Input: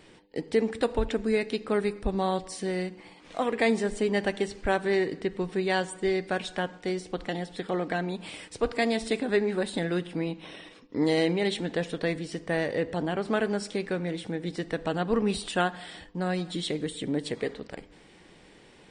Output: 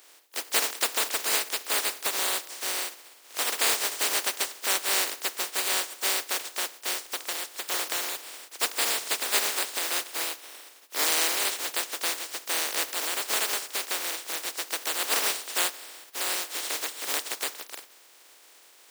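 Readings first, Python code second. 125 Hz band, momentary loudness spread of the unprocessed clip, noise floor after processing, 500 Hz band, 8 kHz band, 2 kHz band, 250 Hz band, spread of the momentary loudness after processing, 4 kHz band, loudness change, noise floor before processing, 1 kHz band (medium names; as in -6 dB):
under -30 dB, 9 LU, -55 dBFS, -11.0 dB, +18.0 dB, +2.5 dB, -18.0 dB, 8 LU, +9.5 dB, +2.5 dB, -54 dBFS, -0.5 dB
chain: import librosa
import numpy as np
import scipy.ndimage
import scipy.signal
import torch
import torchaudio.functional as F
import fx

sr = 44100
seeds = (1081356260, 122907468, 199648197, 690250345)

y = fx.spec_flatten(x, sr, power=0.11)
y = scipy.signal.sosfilt(scipy.signal.butter(4, 330.0, 'highpass', fs=sr, output='sos'), y)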